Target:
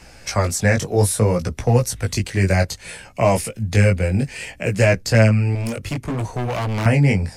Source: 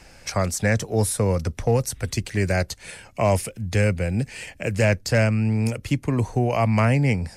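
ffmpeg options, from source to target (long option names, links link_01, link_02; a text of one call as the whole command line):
ffmpeg -i in.wav -filter_complex "[0:a]flanger=delay=16:depth=5.1:speed=0.62,asettb=1/sr,asplit=3[link_01][link_02][link_03];[link_01]atrim=end=5.554[link_04];[link_02]atrim=start=5.55:end=6.86,asetpts=PTS-STARTPTS,afade=type=in:duration=0.004:curve=qsin,afade=type=out:start_time=1.306:duration=0.004:curve=qsin,asoftclip=type=hard:threshold=-28dB[link_05];[link_03]atrim=start=6.856[link_06];[link_04][link_05]acrossfade=duration=0.004:curve1=hsin:curve2=qsin[link_07];[link_07][link_06]acrossfade=duration=0.004:curve1=qsin:curve2=hsin,volume=7dB" out.wav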